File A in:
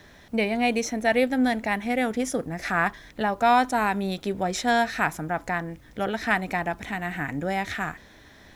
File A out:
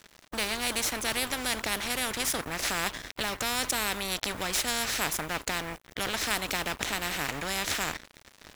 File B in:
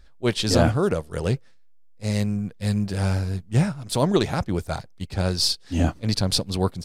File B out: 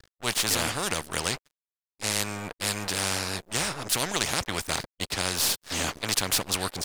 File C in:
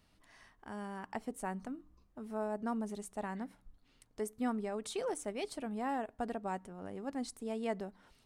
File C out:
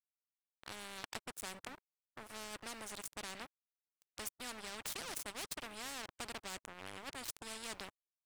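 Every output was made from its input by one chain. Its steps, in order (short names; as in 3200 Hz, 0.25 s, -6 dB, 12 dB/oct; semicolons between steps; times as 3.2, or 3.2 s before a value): crossover distortion -45 dBFS; spectral compressor 4:1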